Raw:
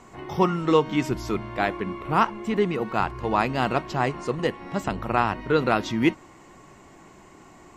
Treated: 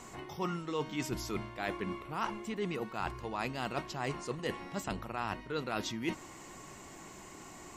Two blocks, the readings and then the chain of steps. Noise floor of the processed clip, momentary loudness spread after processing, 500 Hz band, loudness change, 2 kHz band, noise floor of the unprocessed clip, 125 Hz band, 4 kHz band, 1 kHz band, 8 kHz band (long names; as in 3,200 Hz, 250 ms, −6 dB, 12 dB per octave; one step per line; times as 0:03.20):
−51 dBFS, 13 LU, −13.5 dB, −13.0 dB, −11.0 dB, −50 dBFS, −12.0 dB, −7.5 dB, −13.5 dB, −1.0 dB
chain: high-shelf EQ 3,500 Hz +11 dB
reversed playback
downward compressor 5 to 1, threshold −32 dBFS, peak gain reduction 17 dB
reversed playback
level −2 dB